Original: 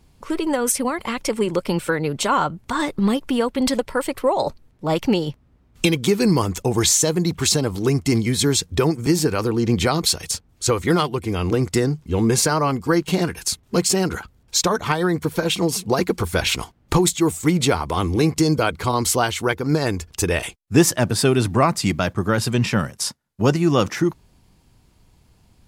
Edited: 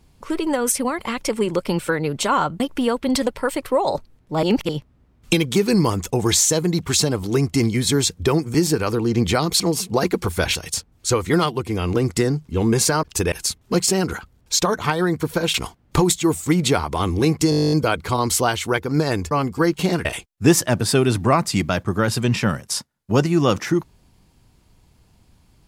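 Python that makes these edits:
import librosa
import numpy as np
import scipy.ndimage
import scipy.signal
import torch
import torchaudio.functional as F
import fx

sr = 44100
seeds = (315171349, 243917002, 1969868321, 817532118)

y = fx.edit(x, sr, fx.cut(start_s=2.6, length_s=0.52),
    fx.reverse_span(start_s=4.95, length_s=0.26),
    fx.swap(start_s=12.6, length_s=0.74, other_s=20.06, other_length_s=0.29),
    fx.move(start_s=15.56, length_s=0.95, to_s=10.12),
    fx.stutter(start_s=18.47, slice_s=0.02, count=12), tone=tone)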